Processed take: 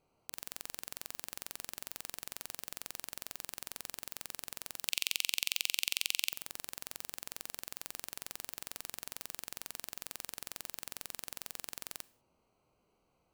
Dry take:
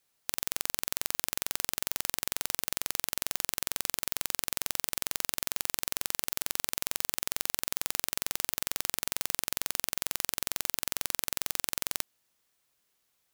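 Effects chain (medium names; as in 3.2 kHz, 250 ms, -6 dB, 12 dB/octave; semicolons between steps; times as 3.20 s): local Wiener filter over 25 samples; 4.88–6.33 s: steep high-pass 2.5 kHz 48 dB/octave; harmonic-percussive split harmonic +9 dB; in parallel at +3 dB: peak limiter -4.5 dBFS, peak gain reduction 8 dB; on the sum: saturation -13 dBFS, distortion -2 dB; on a send at -20 dB: reverberation, pre-delay 34 ms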